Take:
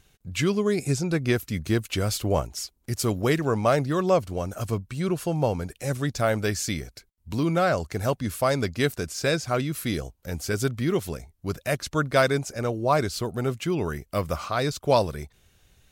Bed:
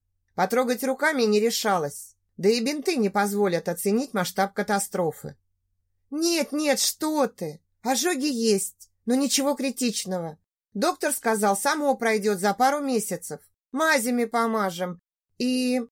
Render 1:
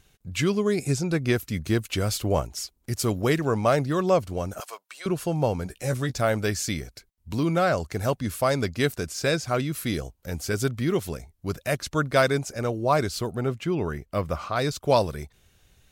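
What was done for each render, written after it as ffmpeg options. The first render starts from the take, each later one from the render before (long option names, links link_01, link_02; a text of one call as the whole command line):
ffmpeg -i in.wav -filter_complex "[0:a]asettb=1/sr,asplit=3[link_01][link_02][link_03];[link_01]atrim=end=4.604[link_04];[link_02]atrim=start=4.6:end=5.06,asetpts=PTS-STARTPTS,afade=type=in:duration=0.004:curve=qsin,afade=type=out:start_time=0.456:duration=0.004:curve=qsin,highpass=frequency=670:width=0.5412,highpass=frequency=670:width=1.3066[link_05];[link_03]atrim=start=5.056[link_06];[link_04][link_05]acrossfade=duration=0.004:curve1=hsin:curve2=qsin[link_07];[link_07][link_06]acrossfade=duration=0.004:curve1=qsin:curve2=hsin,asettb=1/sr,asplit=3[link_08][link_09][link_10];[link_08]atrim=end=5.644[link_11];[link_09]atrim=start=5.64:end=6.18,asetpts=PTS-STARTPTS,afade=type=in:duration=0.004:curve=qsin,afade=type=out:start_time=0.536:duration=0.004:curve=qsin,asplit=2[link_12][link_13];[link_13]adelay=16,volume=-8dB[link_14];[link_12][link_14]amix=inputs=2:normalize=0,atrim=end_sample=23814[link_15];[link_10]atrim=start=6.176[link_16];[link_11][link_15]acrossfade=duration=0.004:curve1=hsin:curve2=qsin[link_17];[link_17][link_16]acrossfade=duration=0.004:curve1=qsin:curve2=hsin,asettb=1/sr,asplit=3[link_18][link_19][link_20];[link_18]atrim=end=13.354[link_21];[link_19]atrim=start=13.35:end=14.56,asetpts=PTS-STARTPTS,afade=type=in:duration=0.004:curve=qsin,afade=type=out:start_time=1.206:duration=0.004:curve=qsin,highshelf=frequency=4300:gain=-10[link_22];[link_20]atrim=start=14.556[link_23];[link_21][link_22]acrossfade=duration=0.004:curve1=hsin:curve2=qsin[link_24];[link_24][link_23]acrossfade=duration=0.004:curve1=qsin:curve2=hsin" out.wav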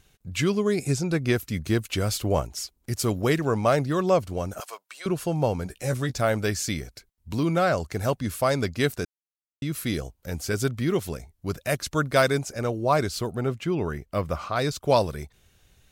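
ffmpeg -i in.wav -filter_complex "[0:a]asettb=1/sr,asplit=3[link_01][link_02][link_03];[link_01]atrim=end=11.694[link_04];[link_02]atrim=start=11.69:end=12.42,asetpts=PTS-STARTPTS,afade=type=in:duration=0.004:curve=qsin,afade=type=out:start_time=0.726:duration=0.004:curve=qsin,highshelf=frequency=7700:gain=5[link_05];[link_03]atrim=start=12.416[link_06];[link_04][link_05]acrossfade=duration=0.004:curve1=hsin:curve2=qsin[link_07];[link_07][link_06]acrossfade=duration=0.004:curve1=qsin:curve2=hsin,asplit=3[link_08][link_09][link_10];[link_08]atrim=end=9.05,asetpts=PTS-STARTPTS,afade=type=out:start_time=9.046:duration=0.004:curve=hsin[link_11];[link_09]atrim=start=9.05:end=9.62,asetpts=PTS-STARTPTS,volume=0[link_12];[link_10]atrim=start=9.62,asetpts=PTS-STARTPTS,afade=type=in:duration=0.004:curve=hsin[link_13];[link_11][link_12][link_13]concat=n=3:v=0:a=1" out.wav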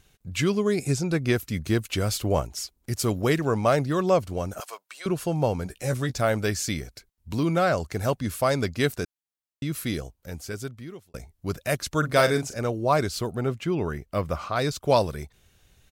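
ffmpeg -i in.wav -filter_complex "[0:a]asplit=3[link_01][link_02][link_03];[link_01]afade=type=out:start_time=12.02:duration=0.02[link_04];[link_02]asplit=2[link_05][link_06];[link_06]adelay=40,volume=-8dB[link_07];[link_05][link_07]amix=inputs=2:normalize=0,afade=type=in:start_time=12.02:duration=0.02,afade=type=out:start_time=12.57:duration=0.02[link_08];[link_03]afade=type=in:start_time=12.57:duration=0.02[link_09];[link_04][link_08][link_09]amix=inputs=3:normalize=0,asplit=2[link_10][link_11];[link_10]atrim=end=11.14,asetpts=PTS-STARTPTS,afade=type=out:start_time=9.73:duration=1.41[link_12];[link_11]atrim=start=11.14,asetpts=PTS-STARTPTS,afade=type=in:duration=0.004:curve=hsin[link_13];[link_12][link_13]concat=n=2:v=0:a=1" out.wav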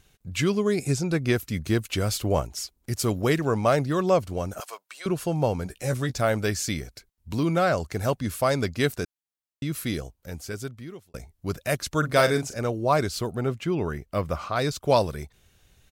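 ffmpeg -i in.wav -af anull out.wav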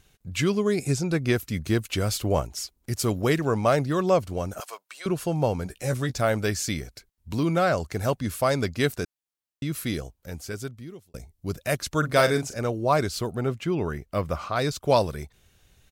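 ffmpeg -i in.wav -filter_complex "[0:a]asettb=1/sr,asplit=3[link_01][link_02][link_03];[link_01]atrim=end=10.704[link_04];[link_02]atrim=start=10.7:end=11.59,asetpts=PTS-STARTPTS,afade=type=in:duration=0.004:curve=qsin,afade=type=out:start_time=0.886:duration=0.004:curve=qsin,equalizer=frequency=1400:width_type=o:width=2.4:gain=-6[link_05];[link_03]atrim=start=11.586[link_06];[link_04][link_05]acrossfade=duration=0.004:curve1=hsin:curve2=qsin[link_07];[link_07][link_06]acrossfade=duration=0.004:curve1=qsin:curve2=hsin" out.wav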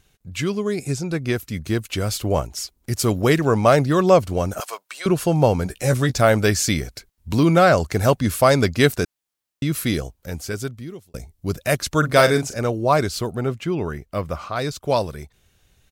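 ffmpeg -i in.wav -af "dynaudnorm=framelen=270:gausssize=21:maxgain=11.5dB" out.wav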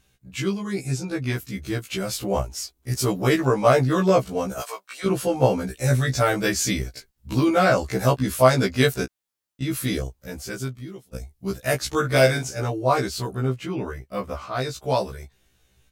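ffmpeg -i in.wav -af "afftfilt=real='re*1.73*eq(mod(b,3),0)':imag='im*1.73*eq(mod(b,3),0)':win_size=2048:overlap=0.75" out.wav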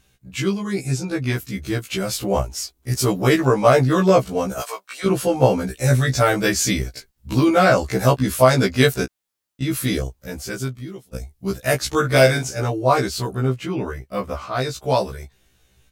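ffmpeg -i in.wav -af "volume=3.5dB,alimiter=limit=-2dB:level=0:latency=1" out.wav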